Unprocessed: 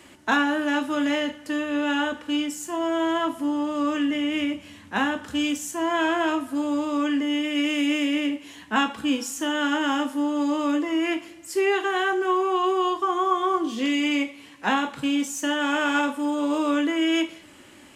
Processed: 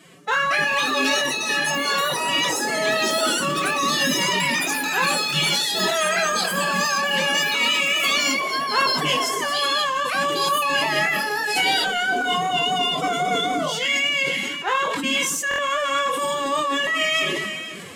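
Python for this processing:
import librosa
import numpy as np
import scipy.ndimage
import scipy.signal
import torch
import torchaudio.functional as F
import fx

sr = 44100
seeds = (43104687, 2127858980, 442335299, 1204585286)

p1 = fx.pitch_keep_formants(x, sr, semitones=11.5)
p2 = scipy.signal.sosfilt(scipy.signal.butter(2, 110.0, 'highpass', fs=sr, output='sos'), p1)
p3 = p2 + 10.0 ** (-20.5 / 20.0) * np.pad(p2, (int(491 * sr / 1000.0), 0))[:len(p2)]
p4 = fx.echo_pitch(p3, sr, ms=321, semitones=7, count=3, db_per_echo=-3.0)
p5 = np.clip(p4, -10.0 ** (-22.0 / 20.0), 10.0 ** (-22.0 / 20.0))
p6 = p4 + (p5 * librosa.db_to_amplitude(-9.0))
p7 = fx.vibrato(p6, sr, rate_hz=4.9, depth_cents=7.7)
p8 = fx.chorus_voices(p7, sr, voices=2, hz=0.22, base_ms=23, depth_ms=3.4, mix_pct=30)
p9 = fx.buffer_glitch(p8, sr, at_s=(15.49,), block=1024, repeats=3)
p10 = fx.sustainer(p9, sr, db_per_s=26.0)
y = p10 * librosa.db_to_amplitude(1.0)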